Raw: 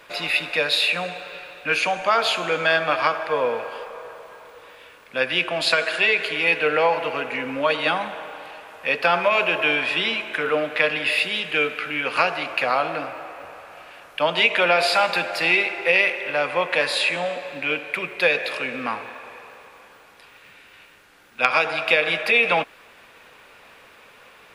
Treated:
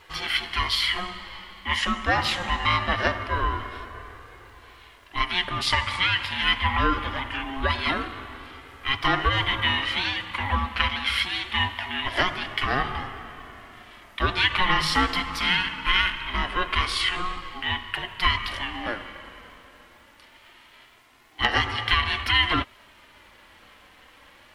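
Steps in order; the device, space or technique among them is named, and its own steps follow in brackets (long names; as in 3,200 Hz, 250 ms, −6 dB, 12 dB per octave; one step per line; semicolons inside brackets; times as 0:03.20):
alien voice (ring modulation 540 Hz; flanger 0.23 Hz, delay 2.4 ms, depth 1.5 ms, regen −40%)
level +3.5 dB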